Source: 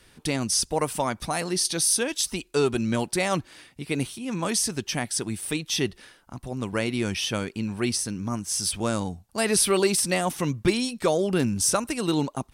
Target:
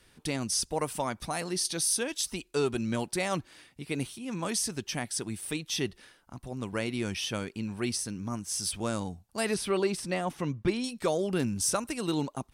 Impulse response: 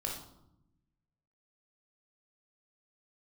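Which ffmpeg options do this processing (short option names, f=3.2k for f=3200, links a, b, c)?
-filter_complex "[0:a]asettb=1/sr,asplit=3[a][b][c];[a]atrim=end=9.544[d];[b]atrim=start=9.54:end=10.84,asetpts=PTS-STARTPTS,afade=t=in:d=0.004:c=qsin,afade=t=out:st=1.296:d=0.004:c=qsin,lowpass=f=2.5k:p=1[e];[c]atrim=start=10.836[f];[d][e]acrossfade=d=0.004:c1=hsin:c2=qsin[g];[g][f]acrossfade=d=0.004:c1=qsin:c2=hsin,volume=-5.5dB"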